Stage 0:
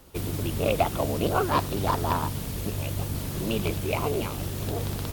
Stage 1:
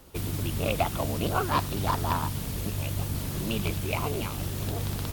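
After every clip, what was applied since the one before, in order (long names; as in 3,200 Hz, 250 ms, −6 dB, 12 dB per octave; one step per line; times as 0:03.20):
dynamic equaliser 460 Hz, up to −6 dB, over −39 dBFS, Q 0.99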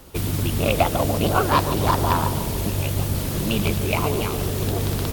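feedback echo with a band-pass in the loop 144 ms, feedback 85%, band-pass 420 Hz, level −7 dB
level +7 dB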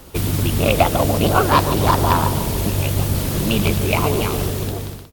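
fade-out on the ending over 0.75 s
level +4 dB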